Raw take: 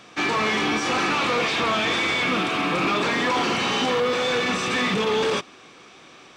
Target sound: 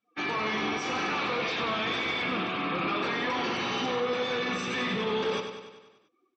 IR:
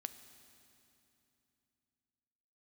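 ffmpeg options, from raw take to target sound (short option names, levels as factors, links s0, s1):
-filter_complex "[0:a]afftdn=nr=34:nf=-37,asplit=2[s0][s1];[s1]aecho=0:1:97|194|291|388|485|582|679:0.398|0.235|0.139|0.0818|0.0482|0.0285|0.0168[s2];[s0][s2]amix=inputs=2:normalize=0,volume=0.398"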